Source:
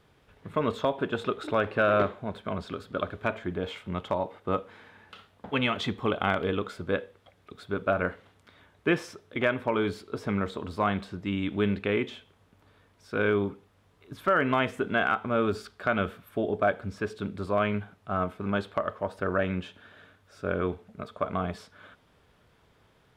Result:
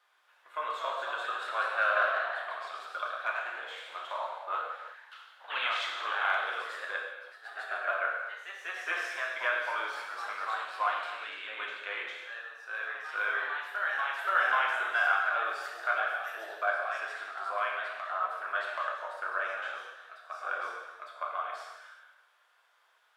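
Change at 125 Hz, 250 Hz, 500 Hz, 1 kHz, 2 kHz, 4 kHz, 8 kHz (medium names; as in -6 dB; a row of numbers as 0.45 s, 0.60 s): under -40 dB, under -30 dB, -11.0 dB, +0.5 dB, +3.0 dB, -1.0 dB, no reading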